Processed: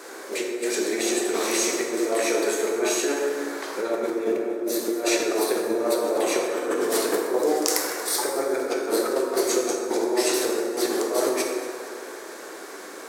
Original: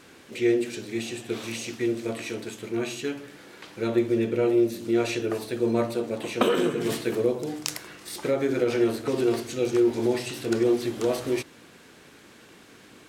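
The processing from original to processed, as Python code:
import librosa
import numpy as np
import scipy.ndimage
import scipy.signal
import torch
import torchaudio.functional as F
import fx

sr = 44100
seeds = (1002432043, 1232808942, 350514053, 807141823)

y = scipy.signal.sosfilt(scipy.signal.butter(4, 370.0, 'highpass', fs=sr, output='sos'), x)
y = fx.peak_eq(y, sr, hz=2900.0, db=-12.5, octaves=0.96)
y = fx.over_compress(y, sr, threshold_db=-35.0, ratio=-1.0)
y = fx.echo_feedback(y, sr, ms=234, feedback_pct=58, wet_db=-18)
y = fx.rev_plate(y, sr, seeds[0], rt60_s=2.0, hf_ratio=0.5, predelay_ms=0, drr_db=-0.5)
y = F.gain(torch.from_numpy(y), 7.5).numpy()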